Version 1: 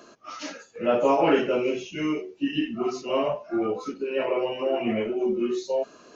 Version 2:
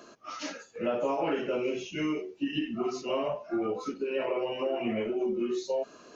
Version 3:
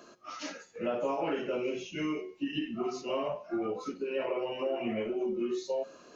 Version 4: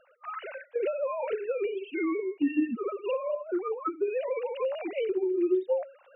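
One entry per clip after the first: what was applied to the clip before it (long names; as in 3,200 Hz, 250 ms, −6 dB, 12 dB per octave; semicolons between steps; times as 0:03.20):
downward compressor 5 to 1, threshold −25 dBFS, peak gain reduction 9.5 dB; level −1.5 dB
tuned comb filter 180 Hz, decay 0.66 s, harmonics all, mix 50%; level +3 dB
three sine waves on the formant tracks; camcorder AGC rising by 18 dB per second; level +2 dB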